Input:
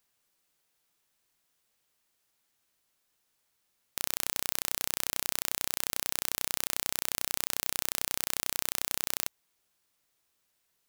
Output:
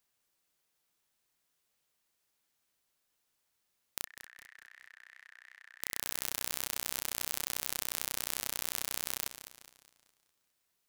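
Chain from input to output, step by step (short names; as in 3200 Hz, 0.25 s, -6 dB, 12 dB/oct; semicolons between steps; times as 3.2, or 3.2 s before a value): 4.04–5.81 band-pass 1800 Hz, Q 11; warbling echo 0.206 s, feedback 44%, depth 191 cents, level -11 dB; gain -4 dB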